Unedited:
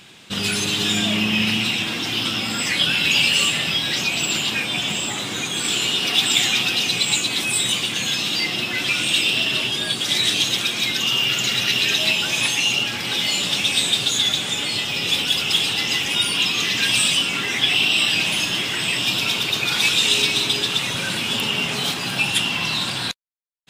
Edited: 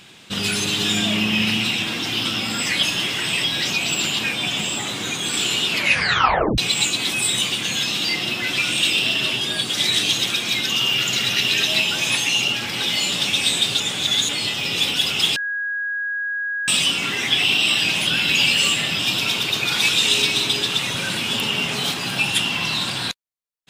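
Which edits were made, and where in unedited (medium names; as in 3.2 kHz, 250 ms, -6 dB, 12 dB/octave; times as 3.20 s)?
2.83–3.75 s: swap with 18.38–18.99 s
5.97 s: tape stop 0.92 s
14.11–14.60 s: reverse
15.67–16.99 s: bleep 1.65 kHz -22 dBFS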